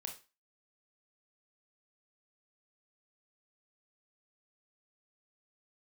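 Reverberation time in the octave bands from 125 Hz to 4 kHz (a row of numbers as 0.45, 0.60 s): 0.25, 0.30, 0.30, 0.30, 0.30, 0.30 s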